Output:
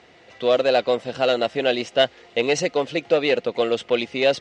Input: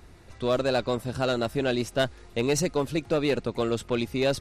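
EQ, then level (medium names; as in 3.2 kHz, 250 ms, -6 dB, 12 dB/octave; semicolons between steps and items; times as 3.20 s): distance through air 97 m; cabinet simulation 190–7800 Hz, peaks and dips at 500 Hz +9 dB, 710 Hz +8 dB, 2 kHz +7 dB, 3 kHz +9 dB; treble shelf 2.4 kHz +8.5 dB; 0.0 dB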